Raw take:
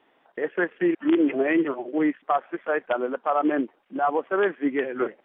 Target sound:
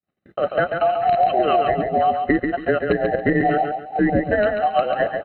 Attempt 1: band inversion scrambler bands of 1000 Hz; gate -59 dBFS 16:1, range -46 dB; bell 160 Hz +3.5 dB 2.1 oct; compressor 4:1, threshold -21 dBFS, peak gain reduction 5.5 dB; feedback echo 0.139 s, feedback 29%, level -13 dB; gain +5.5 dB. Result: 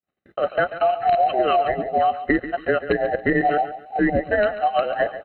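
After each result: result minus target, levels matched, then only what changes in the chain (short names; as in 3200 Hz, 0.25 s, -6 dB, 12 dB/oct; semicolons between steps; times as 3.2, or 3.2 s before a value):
echo-to-direct -7.5 dB; 125 Hz band -3.5 dB
change: feedback echo 0.139 s, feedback 29%, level -5.5 dB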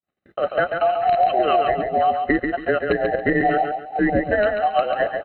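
125 Hz band -3.5 dB
change: bell 160 Hz +10 dB 2.1 oct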